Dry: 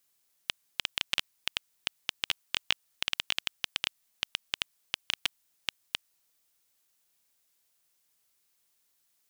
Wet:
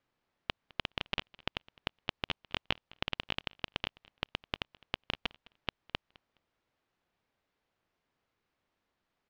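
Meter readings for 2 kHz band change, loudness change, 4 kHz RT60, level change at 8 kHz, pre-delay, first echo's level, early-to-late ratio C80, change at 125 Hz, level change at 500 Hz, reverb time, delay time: -4.0 dB, -5.5 dB, none, -20.5 dB, none, -24.0 dB, none, +9.5 dB, +7.5 dB, none, 0.209 s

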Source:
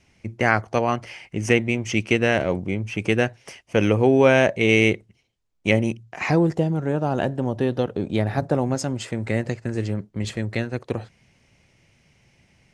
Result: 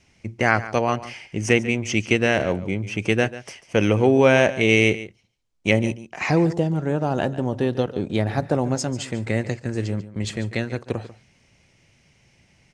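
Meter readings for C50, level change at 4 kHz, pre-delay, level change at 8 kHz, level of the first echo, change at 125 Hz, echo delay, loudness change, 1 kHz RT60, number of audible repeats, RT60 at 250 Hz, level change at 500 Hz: none, +1.5 dB, none, +3.0 dB, -15.5 dB, 0.0 dB, 0.143 s, +0.5 dB, none, 1, none, 0.0 dB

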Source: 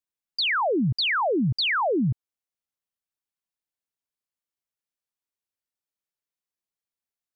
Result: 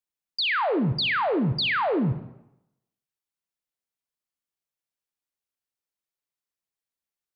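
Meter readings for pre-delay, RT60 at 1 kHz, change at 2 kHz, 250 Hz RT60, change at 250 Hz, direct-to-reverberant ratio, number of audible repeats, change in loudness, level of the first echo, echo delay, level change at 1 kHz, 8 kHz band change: 30 ms, 0.90 s, -0.5 dB, 0.80 s, -0.5 dB, 10.0 dB, none, -0.5 dB, none, none, -0.5 dB, n/a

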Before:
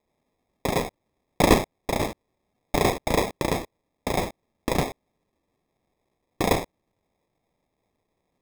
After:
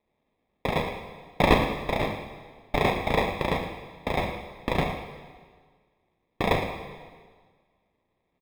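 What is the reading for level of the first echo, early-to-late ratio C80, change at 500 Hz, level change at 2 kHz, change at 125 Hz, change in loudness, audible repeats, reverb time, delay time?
-12.0 dB, 7.0 dB, -1.5 dB, +1.5 dB, -0.5 dB, -1.5 dB, 1, 1.6 s, 0.112 s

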